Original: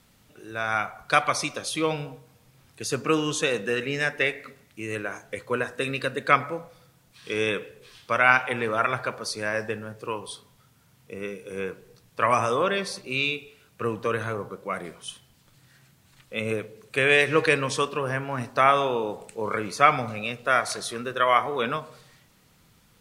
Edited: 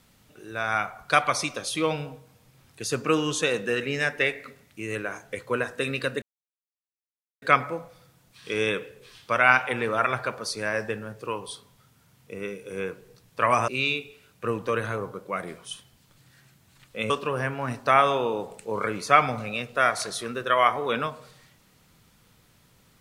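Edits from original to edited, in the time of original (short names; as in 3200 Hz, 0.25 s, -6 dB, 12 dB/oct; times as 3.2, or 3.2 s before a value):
6.22 insert silence 1.20 s
12.48–13.05 cut
16.47–17.8 cut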